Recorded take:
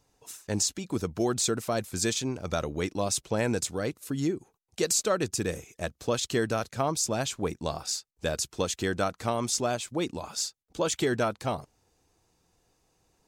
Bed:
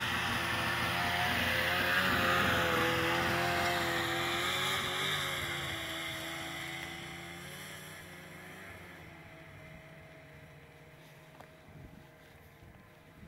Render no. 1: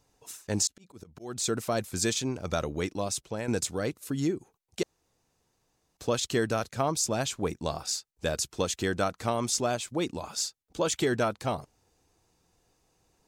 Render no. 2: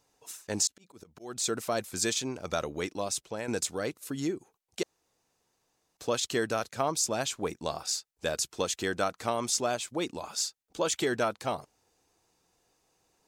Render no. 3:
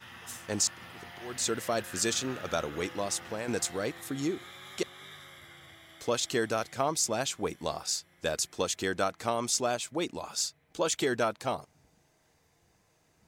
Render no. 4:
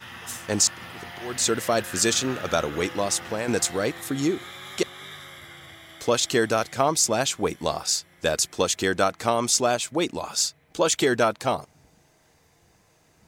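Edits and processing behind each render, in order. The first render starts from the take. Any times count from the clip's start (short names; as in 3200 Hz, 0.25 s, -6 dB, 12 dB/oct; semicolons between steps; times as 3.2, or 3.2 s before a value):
0.67–1.64 auto swell 0.364 s; 2.72–3.48 fade out, to -8.5 dB; 4.83–5.97 room tone
low shelf 190 Hz -11 dB
add bed -15 dB
gain +7.5 dB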